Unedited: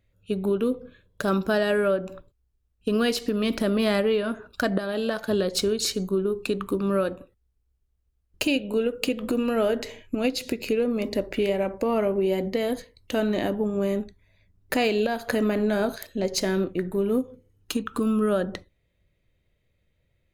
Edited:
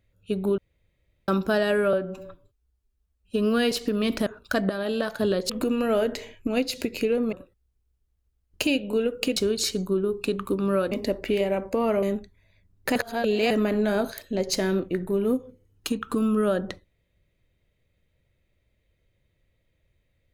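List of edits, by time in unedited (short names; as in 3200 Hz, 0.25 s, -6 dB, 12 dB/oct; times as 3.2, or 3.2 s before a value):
0.58–1.28 room tone
1.93–3.12 stretch 1.5×
3.67–4.35 cut
5.58–7.13 swap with 9.17–11
12.11–13.87 cut
14.8–15.35 reverse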